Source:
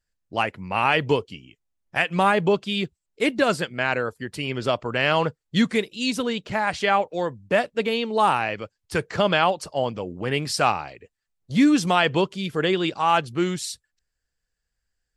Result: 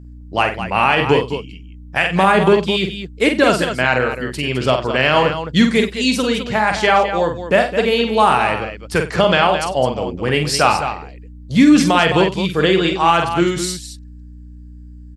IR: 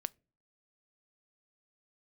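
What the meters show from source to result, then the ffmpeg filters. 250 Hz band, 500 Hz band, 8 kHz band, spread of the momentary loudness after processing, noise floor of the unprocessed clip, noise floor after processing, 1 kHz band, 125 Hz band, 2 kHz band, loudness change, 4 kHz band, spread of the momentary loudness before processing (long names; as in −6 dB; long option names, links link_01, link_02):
+7.5 dB, +7.5 dB, +8.0 dB, 9 LU, −81 dBFS, −37 dBFS, +7.0 dB, +8.0 dB, +7.0 dB, +7.5 dB, +7.5 dB, 9 LU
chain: -af "aeval=exprs='val(0)+0.00708*(sin(2*PI*60*n/s)+sin(2*PI*2*60*n/s)/2+sin(2*PI*3*60*n/s)/3+sin(2*PI*4*60*n/s)/4+sin(2*PI*5*60*n/s)/5)':channel_layout=same,aecho=1:1:47|95|211:0.501|0.133|0.316,alimiter=level_in=7.5dB:limit=-1dB:release=50:level=0:latency=1,volume=-1dB"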